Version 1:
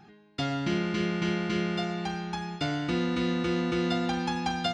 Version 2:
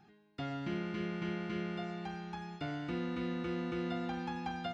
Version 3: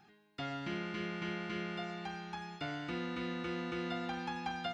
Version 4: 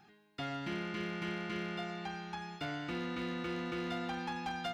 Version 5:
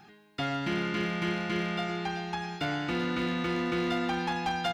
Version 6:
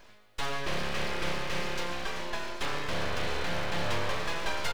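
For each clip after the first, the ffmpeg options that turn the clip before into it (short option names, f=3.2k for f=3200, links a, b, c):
-filter_complex "[0:a]acrossover=split=3000[a][b];[b]acompressor=threshold=-52dB:ratio=4:attack=1:release=60[c];[a][c]amix=inputs=2:normalize=0,volume=-9dB"
-af "tiltshelf=f=650:g=-4"
-af "asoftclip=type=hard:threshold=-33dB,volume=1dB"
-af "aecho=1:1:383:0.251,volume=8dB"
-filter_complex "[0:a]asplit=2[a][b];[b]adelay=699.7,volume=-10dB,highshelf=f=4k:g=-15.7[c];[a][c]amix=inputs=2:normalize=0,aeval=exprs='abs(val(0))':c=same,volume=1.5dB"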